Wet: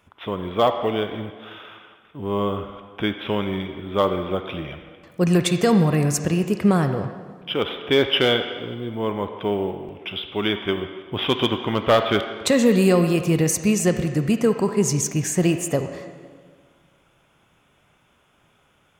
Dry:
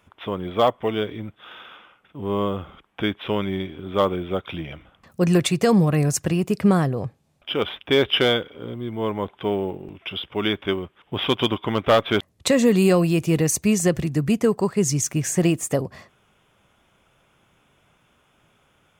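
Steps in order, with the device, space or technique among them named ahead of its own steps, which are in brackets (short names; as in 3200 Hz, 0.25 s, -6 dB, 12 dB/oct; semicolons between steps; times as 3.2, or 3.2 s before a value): filtered reverb send (on a send: HPF 470 Hz 6 dB/oct + LPF 4000 Hz 12 dB/oct + reverb RT60 1.6 s, pre-delay 34 ms, DRR 7 dB)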